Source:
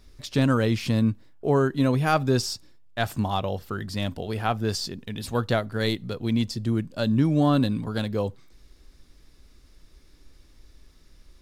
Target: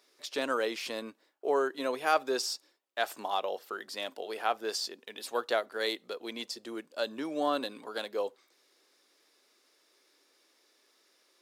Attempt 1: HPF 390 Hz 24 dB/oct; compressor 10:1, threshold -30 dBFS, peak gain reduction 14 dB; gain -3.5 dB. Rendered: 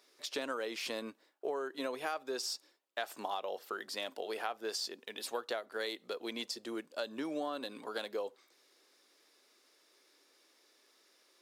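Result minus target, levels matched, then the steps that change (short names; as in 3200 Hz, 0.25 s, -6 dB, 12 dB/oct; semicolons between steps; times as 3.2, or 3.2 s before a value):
compressor: peak gain reduction +14 dB
remove: compressor 10:1, threshold -30 dBFS, peak gain reduction 14 dB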